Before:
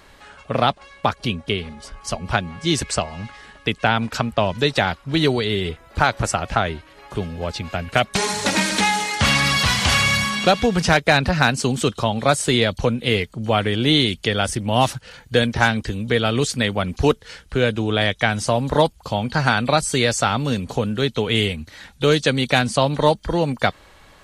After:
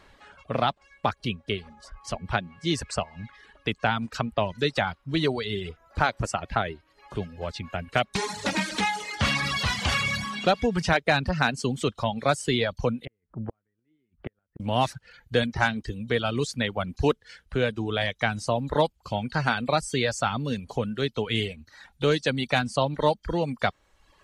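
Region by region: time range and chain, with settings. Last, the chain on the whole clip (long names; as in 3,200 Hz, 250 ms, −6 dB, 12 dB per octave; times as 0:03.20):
0:13.05–0:14.60: low-pass filter 1,700 Hz 24 dB per octave + dynamic equaliser 770 Hz, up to −6 dB, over −33 dBFS, Q 1.1 + gate with flip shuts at −15 dBFS, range −40 dB
whole clip: reverb reduction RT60 0.87 s; high-shelf EQ 7,600 Hz −10.5 dB; level −5.5 dB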